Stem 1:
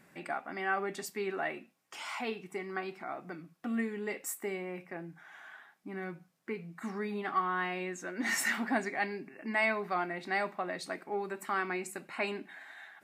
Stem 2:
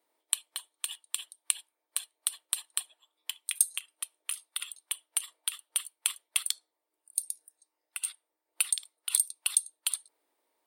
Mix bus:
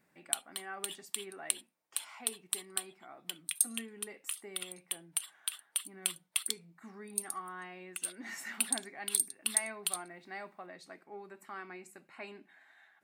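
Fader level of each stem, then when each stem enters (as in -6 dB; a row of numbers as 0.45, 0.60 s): -12.0, -4.0 dB; 0.00, 0.00 s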